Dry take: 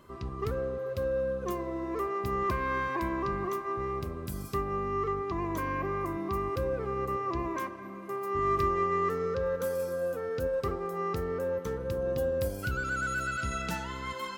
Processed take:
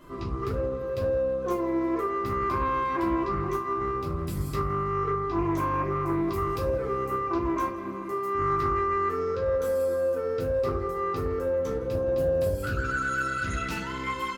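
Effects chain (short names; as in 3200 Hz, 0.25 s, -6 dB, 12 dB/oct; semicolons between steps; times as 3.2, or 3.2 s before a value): feedback echo 0.164 s, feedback 57%, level -23 dB; compressor 2:1, threshold -37 dBFS, peak gain reduction 8 dB; 6.27–7.18 high shelf 4600 Hz -> 8500 Hz +10 dB; reverb RT60 0.35 s, pre-delay 3 ms, DRR -5 dB; Doppler distortion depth 0.19 ms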